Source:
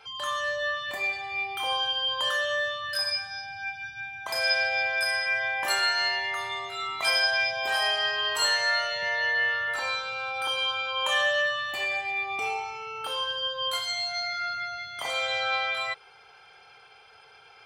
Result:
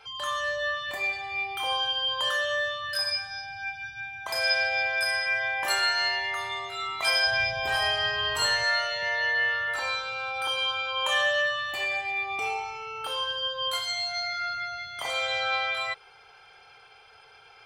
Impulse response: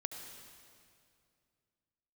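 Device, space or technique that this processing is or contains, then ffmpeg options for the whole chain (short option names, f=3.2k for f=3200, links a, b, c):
low shelf boost with a cut just above: -filter_complex "[0:a]lowshelf=f=70:g=7.5,equalizer=f=210:t=o:w=0.98:g=-3,asettb=1/sr,asplit=3[a][b][c];[a]atrim=end=7.274[d];[b]atrim=start=7.27:end=8.64,asetpts=PTS-STARTPTS,afade=t=in:d=0.004:c=qsin,afade=t=out:st=1.366:d=0.004:c=qsin,bass=f=250:g=13,treble=f=4k:g=-2[e];[c]atrim=start=8.636[f];[d][e]acrossfade=d=0.004:c1=hsin:c2=qsin[g];[g][f]acrossfade=d=0.004:c1=qsin:c2=hsin"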